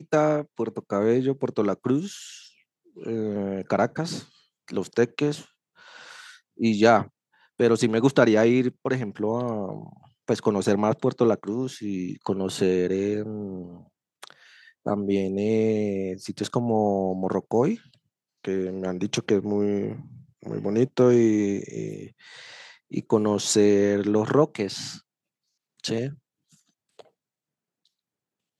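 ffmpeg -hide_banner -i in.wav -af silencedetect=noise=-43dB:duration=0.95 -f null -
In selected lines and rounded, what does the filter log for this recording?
silence_start: 27.01
silence_end: 28.59 | silence_duration: 1.58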